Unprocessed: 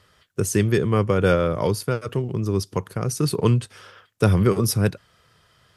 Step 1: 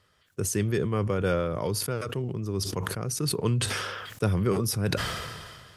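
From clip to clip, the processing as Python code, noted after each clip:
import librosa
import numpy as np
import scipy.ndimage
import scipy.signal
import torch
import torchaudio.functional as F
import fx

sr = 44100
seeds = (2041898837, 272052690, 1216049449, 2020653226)

y = fx.sustainer(x, sr, db_per_s=32.0)
y = F.gain(torch.from_numpy(y), -8.0).numpy()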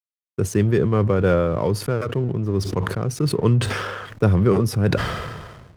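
y = fx.high_shelf(x, sr, hz=2800.0, db=-12.0)
y = fx.backlash(y, sr, play_db=-46.0)
y = F.gain(torch.from_numpy(y), 8.5).numpy()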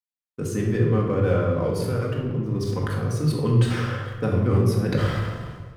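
y = fx.room_shoebox(x, sr, seeds[0], volume_m3=720.0, walls='mixed', distance_m=2.0)
y = F.gain(torch.from_numpy(y), -8.5).numpy()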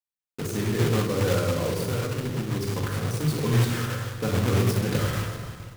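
y = fx.block_float(x, sr, bits=3)
y = y + 10.0 ** (-18.5 / 20.0) * np.pad(y, (int(444 * sr / 1000.0), 0))[:len(y)]
y = F.gain(torch.from_numpy(y), -3.0).numpy()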